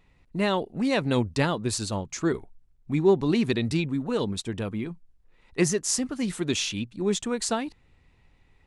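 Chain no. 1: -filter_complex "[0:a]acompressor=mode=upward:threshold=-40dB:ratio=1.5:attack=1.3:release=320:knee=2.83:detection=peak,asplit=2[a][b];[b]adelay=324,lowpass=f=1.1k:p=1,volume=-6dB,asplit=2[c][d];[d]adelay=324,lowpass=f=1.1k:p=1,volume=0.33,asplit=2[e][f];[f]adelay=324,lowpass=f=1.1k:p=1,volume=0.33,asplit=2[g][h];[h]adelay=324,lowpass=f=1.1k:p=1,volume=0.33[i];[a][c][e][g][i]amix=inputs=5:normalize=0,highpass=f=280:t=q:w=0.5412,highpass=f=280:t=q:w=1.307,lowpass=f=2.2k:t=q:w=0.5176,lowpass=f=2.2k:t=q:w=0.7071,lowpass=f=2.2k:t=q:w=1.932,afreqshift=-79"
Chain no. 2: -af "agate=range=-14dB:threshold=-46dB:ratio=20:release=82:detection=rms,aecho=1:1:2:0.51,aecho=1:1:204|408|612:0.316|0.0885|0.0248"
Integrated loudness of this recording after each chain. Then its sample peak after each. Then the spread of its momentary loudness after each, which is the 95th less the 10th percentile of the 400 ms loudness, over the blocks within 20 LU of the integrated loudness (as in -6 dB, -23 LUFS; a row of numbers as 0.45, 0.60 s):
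-29.5, -26.5 LUFS; -10.5, -8.5 dBFS; 14, 13 LU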